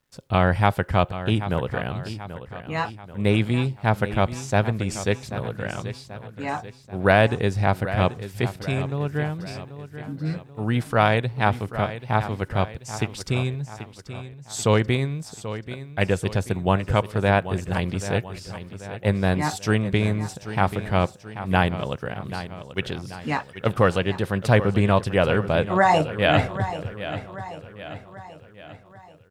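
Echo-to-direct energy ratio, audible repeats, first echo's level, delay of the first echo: -11.5 dB, 4, -12.5 dB, 0.785 s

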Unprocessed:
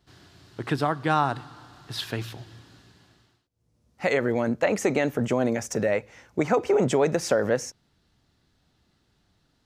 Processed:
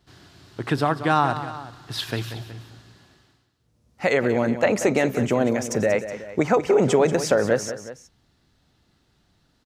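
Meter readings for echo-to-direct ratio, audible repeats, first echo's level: -11.0 dB, 2, -12.0 dB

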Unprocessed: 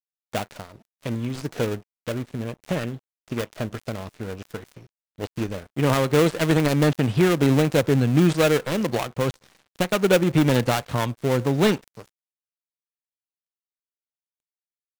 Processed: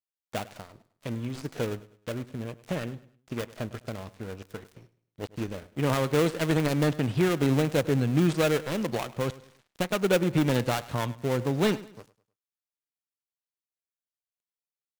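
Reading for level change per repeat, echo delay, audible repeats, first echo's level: -9.0 dB, 0.103 s, 2, -18.5 dB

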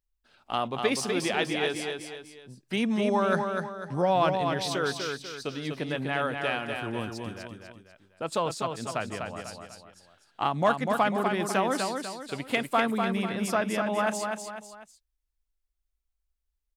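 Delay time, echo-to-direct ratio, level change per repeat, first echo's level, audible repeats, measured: 0.247 s, -4.0 dB, -7.5 dB, -5.0 dB, 3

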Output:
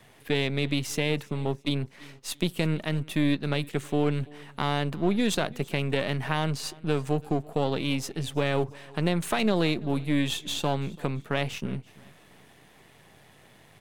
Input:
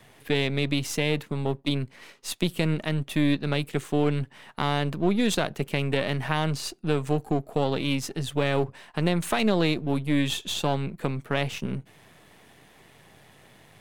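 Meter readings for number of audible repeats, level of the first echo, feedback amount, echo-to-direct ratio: 2, -23.0 dB, 38%, -22.5 dB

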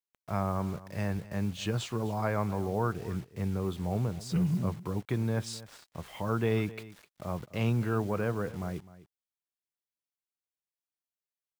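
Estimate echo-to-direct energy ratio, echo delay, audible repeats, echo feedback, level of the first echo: -17.5 dB, 0.256 s, 1, no steady repeat, -17.5 dB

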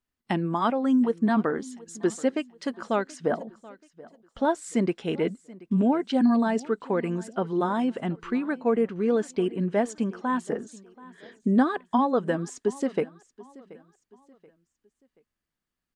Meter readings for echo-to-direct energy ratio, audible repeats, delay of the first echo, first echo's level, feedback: -20.5 dB, 2, 0.73 s, -21.0 dB, 37%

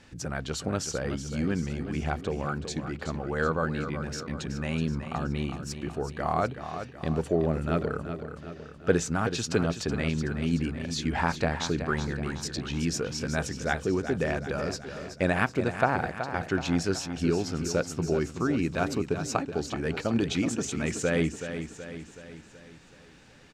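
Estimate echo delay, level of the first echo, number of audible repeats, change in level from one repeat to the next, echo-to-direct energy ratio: 0.375 s, -9.5 dB, 5, -5.5 dB, -8.0 dB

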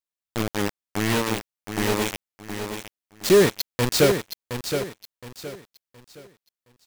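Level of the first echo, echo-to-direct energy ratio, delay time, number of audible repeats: -8.0 dB, -7.5 dB, 0.718 s, 3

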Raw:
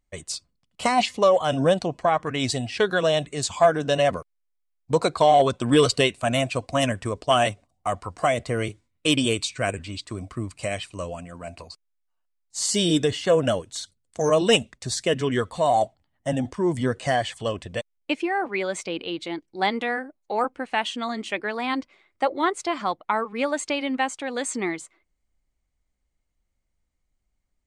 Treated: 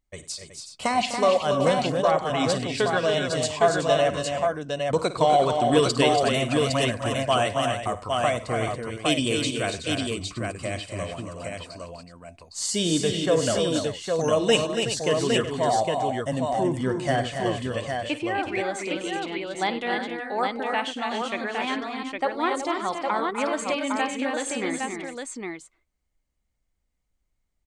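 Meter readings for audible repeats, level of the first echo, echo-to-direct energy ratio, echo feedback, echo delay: 6, -14.5 dB, -0.5 dB, no steady repeat, 54 ms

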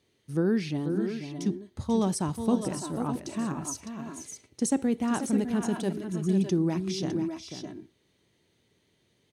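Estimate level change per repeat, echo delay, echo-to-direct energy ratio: no steady repeat, 0.489 s, -5.5 dB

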